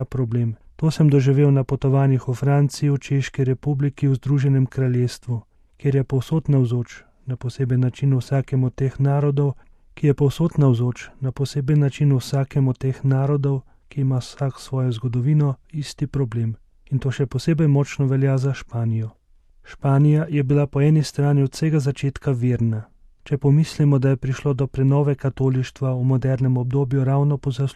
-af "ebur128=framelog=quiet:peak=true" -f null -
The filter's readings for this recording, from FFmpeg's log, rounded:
Integrated loudness:
  I:         -20.7 LUFS
  Threshold: -30.9 LUFS
Loudness range:
  LRA:         3.1 LU
  Threshold: -41.1 LUFS
  LRA low:   -22.5 LUFS
  LRA high:  -19.4 LUFS
True peak:
  Peak:       -5.2 dBFS